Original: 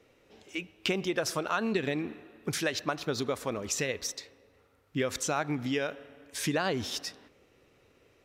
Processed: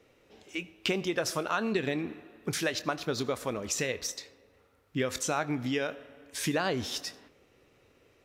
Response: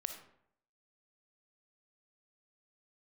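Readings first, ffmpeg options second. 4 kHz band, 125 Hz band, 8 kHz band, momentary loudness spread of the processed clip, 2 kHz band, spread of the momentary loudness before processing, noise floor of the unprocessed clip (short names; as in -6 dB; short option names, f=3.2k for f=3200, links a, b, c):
0.0 dB, 0.0 dB, 0.0 dB, 10 LU, 0.0 dB, 10 LU, -65 dBFS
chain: -filter_complex "[0:a]asplit=2[a][b];[b]highshelf=f=10k:g=11.5[c];[1:a]atrim=start_sample=2205,adelay=24[d];[c][d]afir=irnorm=-1:irlink=0,volume=-14.5dB[e];[a][e]amix=inputs=2:normalize=0"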